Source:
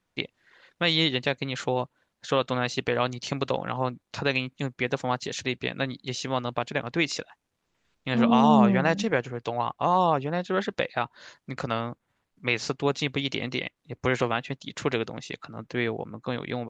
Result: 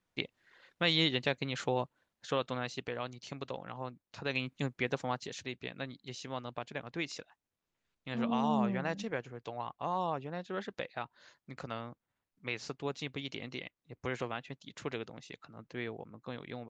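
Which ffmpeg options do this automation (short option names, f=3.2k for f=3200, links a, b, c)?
-af "volume=4dB,afade=t=out:st=1.8:d=1.18:silence=0.398107,afade=t=in:st=4.21:d=0.32:silence=0.334965,afade=t=out:st=4.53:d=0.93:silence=0.398107"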